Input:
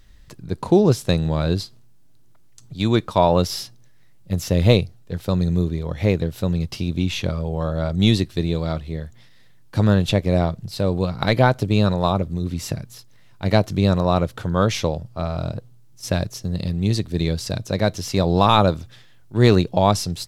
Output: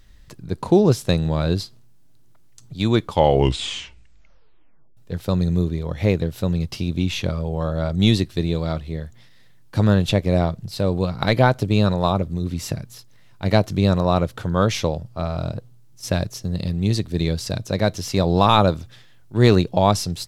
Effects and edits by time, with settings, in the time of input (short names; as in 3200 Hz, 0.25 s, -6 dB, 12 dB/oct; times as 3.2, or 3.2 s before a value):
2.97 tape stop 2.00 s